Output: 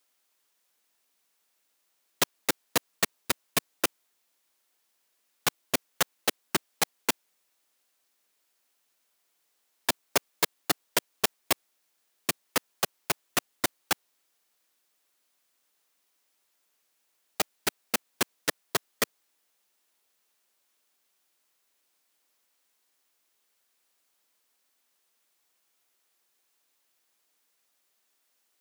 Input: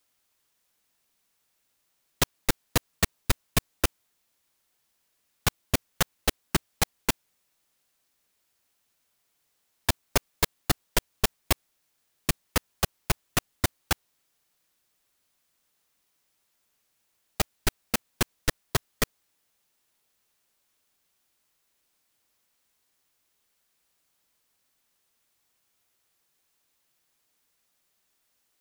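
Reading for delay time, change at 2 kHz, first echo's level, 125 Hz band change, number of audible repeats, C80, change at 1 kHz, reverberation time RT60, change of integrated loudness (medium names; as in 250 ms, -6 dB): no echo, 0.0 dB, no echo, -13.5 dB, no echo, no reverb, 0.0 dB, no reverb, -0.5 dB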